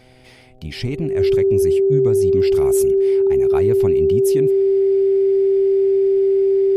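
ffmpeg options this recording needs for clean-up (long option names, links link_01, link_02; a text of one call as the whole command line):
ffmpeg -i in.wav -af "bandreject=frequency=127.1:width_type=h:width=4,bandreject=frequency=254.2:width_type=h:width=4,bandreject=frequency=381.3:width_type=h:width=4,bandreject=frequency=508.4:width_type=h:width=4,bandreject=frequency=635.5:width_type=h:width=4,bandreject=frequency=762.6:width_type=h:width=4,bandreject=frequency=390:width=30" out.wav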